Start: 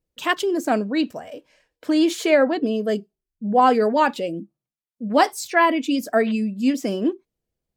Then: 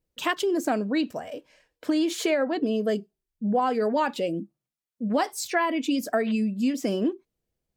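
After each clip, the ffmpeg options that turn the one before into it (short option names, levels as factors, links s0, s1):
-af "acompressor=threshold=0.0891:ratio=6"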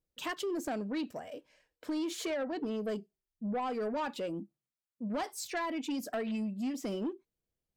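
-af "asoftclip=type=tanh:threshold=0.0841,volume=0.422"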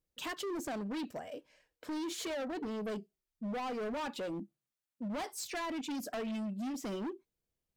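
-af "asoftclip=type=hard:threshold=0.0168"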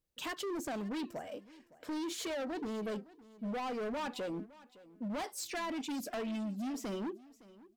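-af "aecho=1:1:562|1124:0.1|0.017"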